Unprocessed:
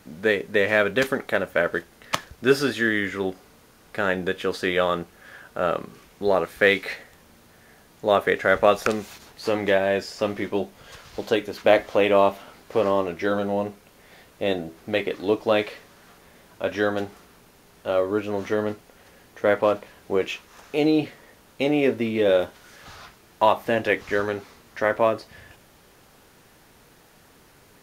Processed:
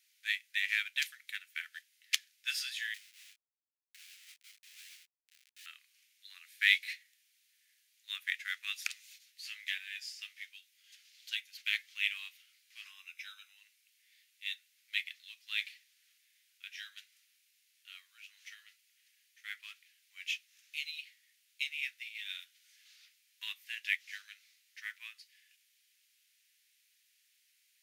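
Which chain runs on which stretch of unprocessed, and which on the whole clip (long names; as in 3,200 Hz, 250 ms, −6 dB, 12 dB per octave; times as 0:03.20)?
0:02.94–0:05.66: treble cut that deepens with the level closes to 640 Hz, closed at −22.5 dBFS + comparator with hysteresis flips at −36.5 dBFS + micro pitch shift up and down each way 53 cents
0:12.85–0:13.57: low-shelf EQ 490 Hz +12 dB + notch filter 4,500 Hz, Q 5.8 + comb filter 0.8 ms, depth 49%
whole clip: Butterworth high-pass 2,100 Hz 36 dB per octave; expander for the loud parts 1.5 to 1, over −48 dBFS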